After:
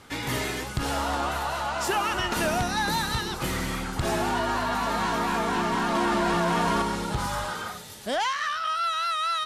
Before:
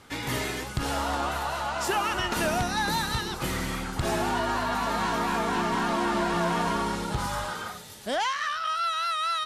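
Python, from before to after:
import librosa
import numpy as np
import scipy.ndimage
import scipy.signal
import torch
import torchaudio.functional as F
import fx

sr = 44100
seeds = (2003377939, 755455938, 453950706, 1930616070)

p1 = 10.0 ** (-33.0 / 20.0) * np.tanh(x / 10.0 ** (-33.0 / 20.0))
p2 = x + (p1 * 10.0 ** (-11.0 / 20.0))
y = fx.env_flatten(p2, sr, amount_pct=100, at=(5.95, 6.82))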